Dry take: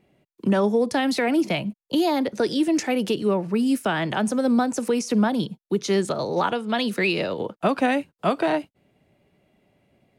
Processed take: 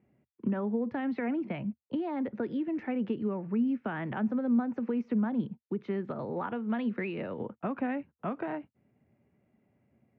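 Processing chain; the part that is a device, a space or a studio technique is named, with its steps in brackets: bass amplifier (compressor 3:1, threshold -22 dBFS, peak gain reduction 5.5 dB; speaker cabinet 66–2200 Hz, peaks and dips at 75 Hz +7 dB, 120 Hz +7 dB, 230 Hz +8 dB, 640 Hz -3 dB); gain -9 dB

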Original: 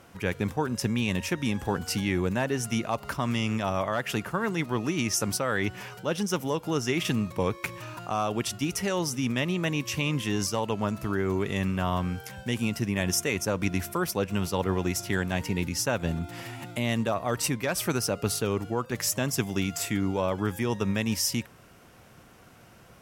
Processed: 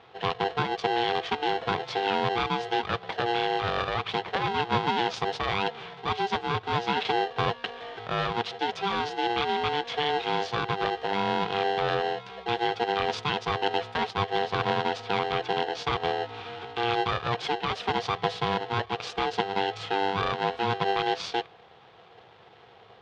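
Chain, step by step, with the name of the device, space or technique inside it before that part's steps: 4.54–5.12 bell 440 Hz +9 dB 0.53 oct; ring modulator pedal into a guitar cabinet (polarity switched at an audio rate 590 Hz; speaker cabinet 95–3900 Hz, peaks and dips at 110 Hz +6 dB, 270 Hz -9 dB, 460 Hz +3 dB, 800 Hz +3 dB, 2000 Hz -4 dB, 3500 Hz +4 dB)

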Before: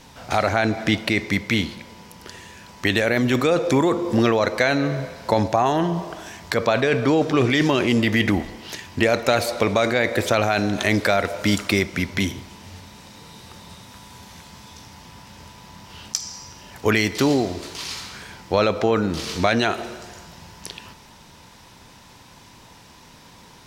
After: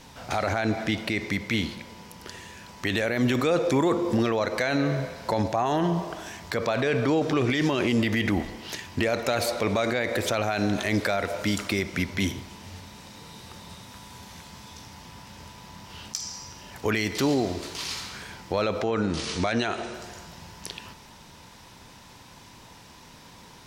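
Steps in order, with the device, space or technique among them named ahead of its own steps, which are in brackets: clipper into limiter (hard clip -7 dBFS, distortion -32 dB; limiter -13 dBFS, peak gain reduction 6 dB); 18.83–19.94 Chebyshev low-pass 10000 Hz, order 8; gain -1.5 dB

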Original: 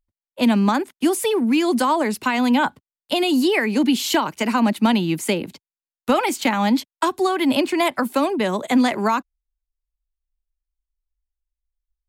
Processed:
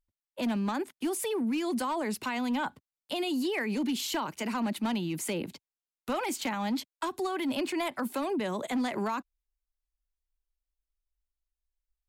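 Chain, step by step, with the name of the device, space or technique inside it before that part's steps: clipper into limiter (hard clip -12.5 dBFS, distortion -21 dB; limiter -20 dBFS, peak gain reduction 7.5 dB); gain -5 dB

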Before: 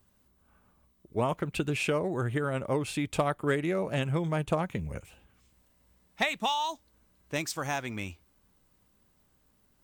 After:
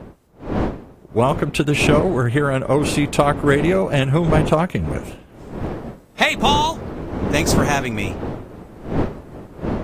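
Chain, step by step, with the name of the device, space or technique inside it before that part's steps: smartphone video outdoors (wind noise 390 Hz -37 dBFS; AGC gain up to 5 dB; gain +7 dB; AAC 48 kbps 32000 Hz)

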